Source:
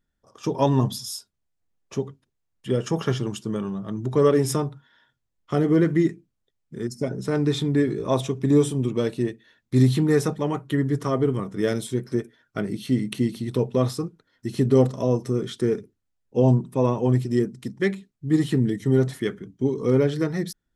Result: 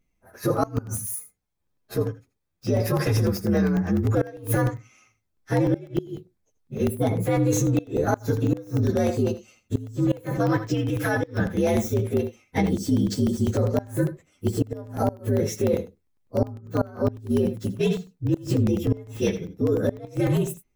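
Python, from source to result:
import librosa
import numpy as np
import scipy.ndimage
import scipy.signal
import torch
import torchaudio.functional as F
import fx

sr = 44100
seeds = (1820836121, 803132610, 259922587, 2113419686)

p1 = fx.partial_stretch(x, sr, pct=122)
p2 = p1 + fx.echo_single(p1, sr, ms=82, db=-14.0, dry=0)
p3 = fx.gate_flip(p2, sr, shuts_db=-12.0, range_db=-29)
p4 = fx.notch(p3, sr, hz=2900.0, q=8.6)
p5 = fx.over_compress(p4, sr, threshold_db=-28.0, ratio=-0.5)
p6 = p4 + F.gain(torch.from_numpy(p5), 1.0).numpy()
p7 = fx.tilt_shelf(p6, sr, db=-4.5, hz=970.0, at=(10.74, 11.39))
y = fx.buffer_crackle(p7, sr, first_s=0.57, period_s=0.1, block=64, kind='zero')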